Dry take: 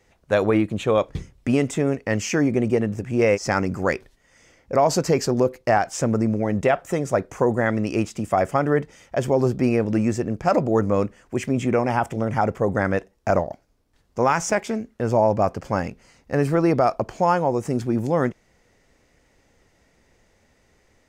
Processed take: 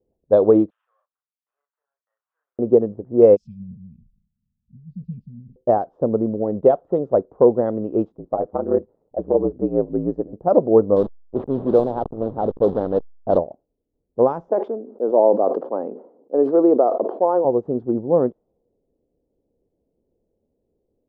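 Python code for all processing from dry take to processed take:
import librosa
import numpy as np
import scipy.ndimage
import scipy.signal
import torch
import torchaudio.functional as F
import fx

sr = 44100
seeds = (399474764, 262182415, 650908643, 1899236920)

y = fx.chain(x, sr, fx.cvsd(bps=16000),
    fx.steep_highpass(hz=1500.0, slope=36),
    fx.doubler(ms=35.0, db=-2.0), at=(0.7, 2.59))
y = fx.chain(y, sr, fx.brickwall_bandstop(low_hz=230.0, high_hz=2300.0),
    fx.sustainer(db_per_s=74.0), at=(3.36, 5.56))
y = fx.chain(y, sr, fx.ring_mod(carrier_hz=56.0),
    fx.peak_eq(hz=3200.0, db=-8.5, octaves=0.67), at=(8.12, 10.33))
y = fx.chain(y, sr, fx.block_float(bits=3),
    fx.backlash(play_db=-24.0),
    fx.sustainer(db_per_s=55.0), at=(10.96, 13.38))
y = fx.chain(y, sr, fx.highpass(hz=270.0, slope=24),
    fx.high_shelf(hz=3000.0, db=-7.5),
    fx.sustainer(db_per_s=54.0), at=(14.49, 17.45))
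y = fx.curve_eq(y, sr, hz=(120.0, 470.0, 1100.0, 2300.0, 3600.0, 5900.0), db=(0, 12, -1, -27, -10, -25))
y = fx.env_lowpass(y, sr, base_hz=430.0, full_db=-6.0)
y = fx.upward_expand(y, sr, threshold_db=-28.0, expansion=1.5)
y = y * librosa.db_to_amplitude(-2.0)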